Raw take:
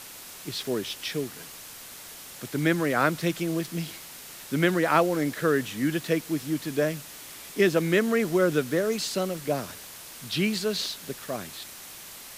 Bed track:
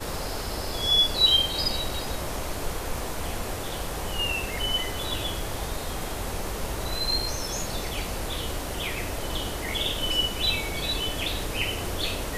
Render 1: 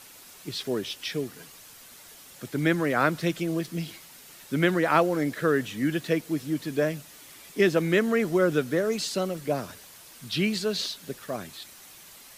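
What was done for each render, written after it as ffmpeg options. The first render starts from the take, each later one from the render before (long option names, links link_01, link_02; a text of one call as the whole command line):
ffmpeg -i in.wav -af "afftdn=noise_reduction=7:noise_floor=-44" out.wav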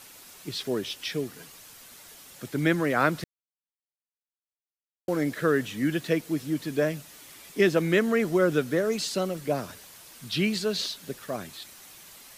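ffmpeg -i in.wav -filter_complex "[0:a]asplit=3[link_01][link_02][link_03];[link_01]atrim=end=3.24,asetpts=PTS-STARTPTS,afade=type=out:start_time=3.236:duration=0.004:curve=hsin[link_04];[link_02]atrim=start=3.24:end=5.08,asetpts=PTS-STARTPTS,volume=0[link_05];[link_03]atrim=start=5.08,asetpts=PTS-STARTPTS,afade=type=in:duration=0.004:curve=hsin[link_06];[link_04][link_05][link_06]concat=n=3:v=0:a=1" out.wav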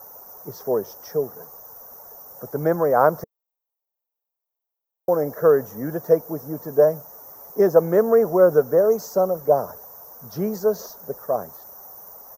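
ffmpeg -i in.wav -af "firequalizer=gain_entry='entry(210,0);entry(300,-5);entry(450,11);entry(870,12);entry(2600,-29);entry(4000,-25);entry(5800,1);entry(9200,-19);entry(14000,15)':delay=0.05:min_phase=1" out.wav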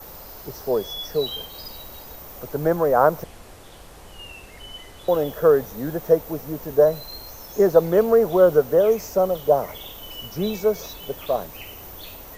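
ffmpeg -i in.wav -i bed.wav -filter_complex "[1:a]volume=-12.5dB[link_01];[0:a][link_01]amix=inputs=2:normalize=0" out.wav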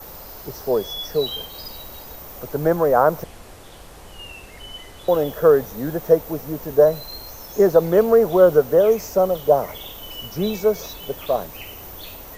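ffmpeg -i in.wav -af "volume=2dB,alimiter=limit=-3dB:level=0:latency=1" out.wav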